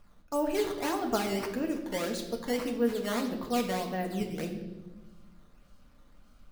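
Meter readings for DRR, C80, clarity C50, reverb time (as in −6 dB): 2.0 dB, 10.0 dB, 8.0 dB, 1.1 s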